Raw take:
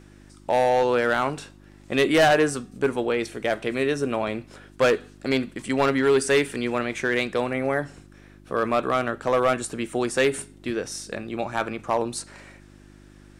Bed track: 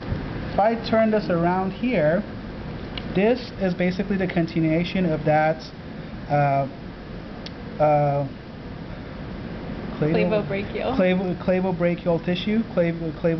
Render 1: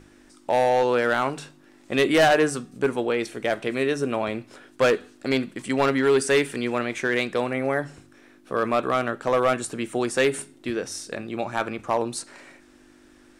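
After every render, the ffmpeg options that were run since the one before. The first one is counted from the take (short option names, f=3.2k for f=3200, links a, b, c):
-af "bandreject=f=50:t=h:w=4,bandreject=f=100:t=h:w=4,bandreject=f=150:t=h:w=4,bandreject=f=200:t=h:w=4"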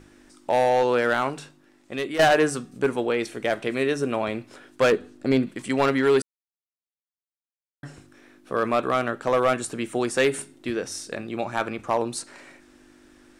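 -filter_complex "[0:a]asettb=1/sr,asplit=3[a][b][c];[a]atrim=end=4.924[d];[b]atrim=start=4.92:end=5.47,asetpts=PTS-STARTPTS,afade=t=in:d=0.004:c=qsin,afade=t=out:st=0.546:d=0.004:c=qsin,tiltshelf=f=650:g=5.5[e];[c]atrim=start=5.466[f];[d][e]acrossfade=d=0.004:c1=hsin:c2=qsin[g];[g][f]acrossfade=d=0.004:c1=qsin:c2=hsin,asplit=4[h][i][j][k];[h]atrim=end=2.19,asetpts=PTS-STARTPTS,afade=t=out:st=1.11:d=1.08:silence=0.266073[l];[i]atrim=start=2.19:end=6.22,asetpts=PTS-STARTPTS,afade=t=in:d=0.004:c=hsin:silence=0.266073,afade=t=out:st=4.026:d=0.004:c=hsin[m];[j]atrim=start=6.22:end=7.83,asetpts=PTS-STARTPTS,volume=0[n];[k]atrim=start=7.83,asetpts=PTS-STARTPTS,afade=t=in:d=0.004:c=hsin[o];[l][m][n][o]concat=n=4:v=0:a=1"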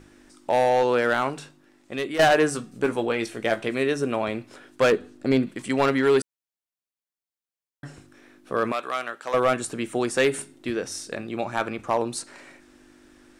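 -filter_complex "[0:a]asettb=1/sr,asplit=3[a][b][c];[a]atrim=end=2.534[d];[b]atrim=start=2.53:end=3.69,asetpts=PTS-STARTPTS,afade=t=in:d=0.004:c=qsin,afade=t=out:st=1.156:d=0.004:c=qsin,asplit=2[e][f];[f]adelay=18,volume=-8dB[g];[e][g]amix=inputs=2:normalize=0,atrim=end_sample=51156[h];[c]atrim=start=3.686[i];[d][h]acrossfade=d=0.004:c1=hsin:c2=qsin[j];[j][i]acrossfade=d=0.004:c1=qsin:c2=hsin,asettb=1/sr,asplit=3[k][l][m];[k]atrim=end=8.724[n];[l]atrim=start=8.72:end=9.34,asetpts=PTS-STARTPTS,afade=t=in:d=0.004:c=qsin,afade=t=out:st=0.616:d=0.004:c=qsin,highpass=f=1.4k:p=1[o];[m]atrim=start=9.336[p];[n][o]acrossfade=d=0.004:c1=hsin:c2=qsin[q];[q][p]acrossfade=d=0.004:c1=qsin:c2=hsin"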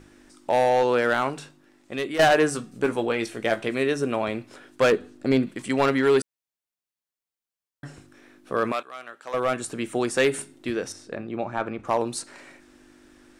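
-filter_complex "[0:a]asettb=1/sr,asplit=3[a][b][c];[a]atrim=end=10.924[d];[b]atrim=start=10.92:end=11.85,asetpts=PTS-STARTPTS,afade=t=in:d=0.004:c=qsin,afade=t=out:st=0.926:d=0.004:c=qsin,lowpass=f=1.4k:p=1[e];[c]atrim=start=11.846[f];[d][e]acrossfade=d=0.004:c1=hsin:c2=qsin[g];[g][f]acrossfade=d=0.004:c1=qsin:c2=hsin,asplit=2[h][i];[h]atrim=end=8.83,asetpts=PTS-STARTPTS,afade=t=out:st=8.826:d=0.004:c=hsin:silence=0.177828[j];[i]atrim=start=8.83,asetpts=PTS-STARTPTS,afade=t=in:d=1.04:silence=0.177828[k];[j][k]concat=n=2:v=0:a=1"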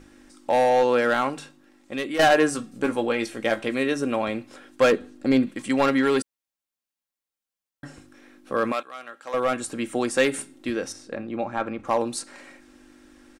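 -af "aecho=1:1:3.7:0.38"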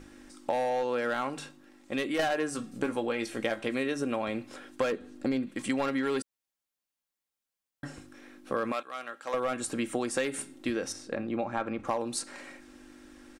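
-af "acompressor=threshold=-27dB:ratio=6"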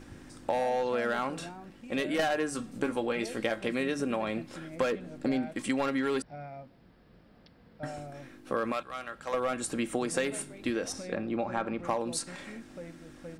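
-filter_complex "[1:a]volume=-23.5dB[a];[0:a][a]amix=inputs=2:normalize=0"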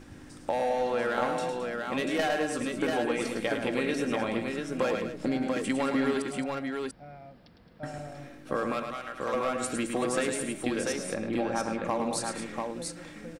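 -af "aecho=1:1:107|217|690:0.473|0.266|0.631"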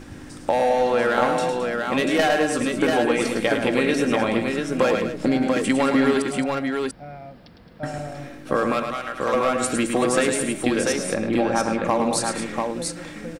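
-af "volume=8.5dB"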